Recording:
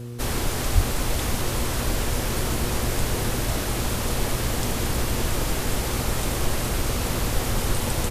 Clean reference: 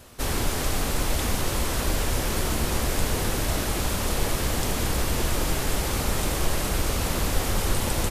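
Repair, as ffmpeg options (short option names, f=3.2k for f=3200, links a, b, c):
-filter_complex "[0:a]bandreject=f=119.8:t=h:w=4,bandreject=f=239.6:t=h:w=4,bandreject=f=359.4:t=h:w=4,bandreject=f=479.2:t=h:w=4,asplit=3[a][b][c];[a]afade=t=out:st=0.74:d=0.02[d];[b]highpass=f=140:w=0.5412,highpass=f=140:w=1.3066,afade=t=in:st=0.74:d=0.02,afade=t=out:st=0.86:d=0.02[e];[c]afade=t=in:st=0.86:d=0.02[f];[d][e][f]amix=inputs=3:normalize=0"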